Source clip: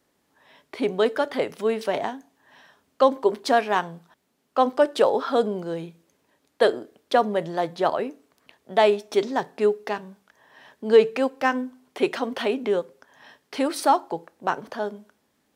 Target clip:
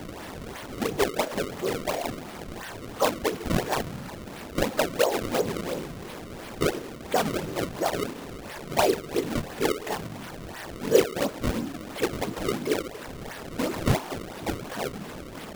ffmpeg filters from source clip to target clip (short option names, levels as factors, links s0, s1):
-af "aeval=exprs='val(0)+0.5*0.0447*sgn(val(0))':c=same,afftfilt=real='hypot(re,im)*cos(2*PI*random(0))':imag='hypot(re,im)*sin(2*PI*random(1))':win_size=512:overlap=0.75,acrusher=samples=30:mix=1:aa=0.000001:lfo=1:lforange=48:lforate=2.9"